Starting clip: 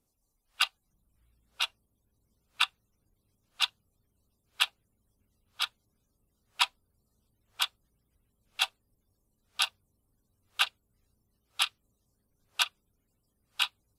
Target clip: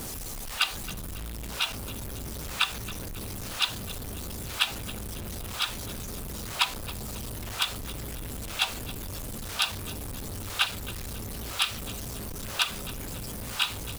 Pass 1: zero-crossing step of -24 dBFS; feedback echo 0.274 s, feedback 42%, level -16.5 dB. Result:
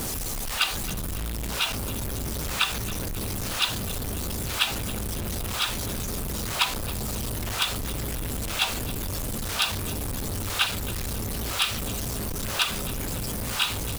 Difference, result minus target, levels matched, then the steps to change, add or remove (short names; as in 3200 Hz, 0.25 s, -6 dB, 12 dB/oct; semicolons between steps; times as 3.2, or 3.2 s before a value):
zero-crossing step: distortion +5 dB
change: zero-crossing step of -30.5 dBFS